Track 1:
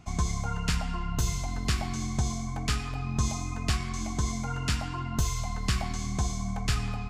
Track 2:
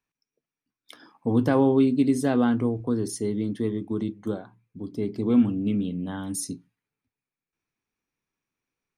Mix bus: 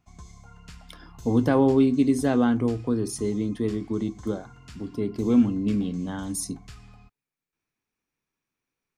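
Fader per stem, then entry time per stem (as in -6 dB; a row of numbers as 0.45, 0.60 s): -17.5, +0.5 dB; 0.00, 0.00 s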